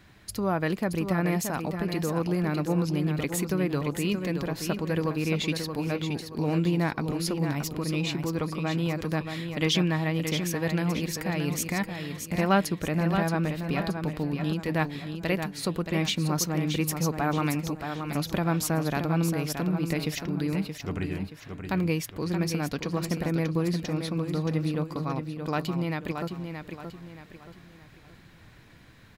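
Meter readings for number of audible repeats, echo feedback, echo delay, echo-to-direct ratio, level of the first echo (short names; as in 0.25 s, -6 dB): 4, 37%, 0.625 s, -6.5 dB, -7.0 dB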